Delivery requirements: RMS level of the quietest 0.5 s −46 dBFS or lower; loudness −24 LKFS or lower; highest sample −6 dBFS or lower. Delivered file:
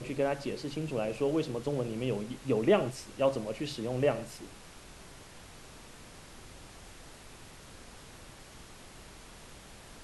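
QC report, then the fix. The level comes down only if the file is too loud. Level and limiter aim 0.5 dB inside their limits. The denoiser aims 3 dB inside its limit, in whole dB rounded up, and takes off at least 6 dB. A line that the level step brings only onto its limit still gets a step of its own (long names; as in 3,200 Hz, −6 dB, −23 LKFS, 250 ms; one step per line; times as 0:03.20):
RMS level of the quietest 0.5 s −51 dBFS: in spec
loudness −32.0 LKFS: in spec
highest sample −12.5 dBFS: in spec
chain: no processing needed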